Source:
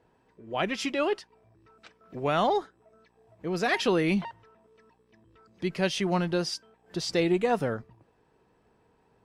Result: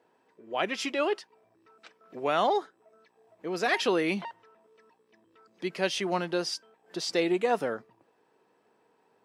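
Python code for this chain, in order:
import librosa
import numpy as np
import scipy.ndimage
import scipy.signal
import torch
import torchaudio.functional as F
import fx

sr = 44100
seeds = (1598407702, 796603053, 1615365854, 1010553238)

y = scipy.signal.sosfilt(scipy.signal.butter(2, 290.0, 'highpass', fs=sr, output='sos'), x)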